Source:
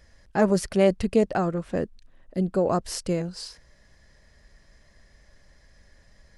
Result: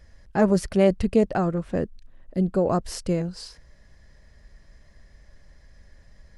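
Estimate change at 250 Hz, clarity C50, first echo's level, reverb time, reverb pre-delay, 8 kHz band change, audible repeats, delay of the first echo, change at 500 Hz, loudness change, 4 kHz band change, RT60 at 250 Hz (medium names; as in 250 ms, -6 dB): +2.0 dB, no reverb, no echo, no reverb, no reverb, -2.5 dB, no echo, no echo, +0.5 dB, +1.0 dB, -2.0 dB, no reverb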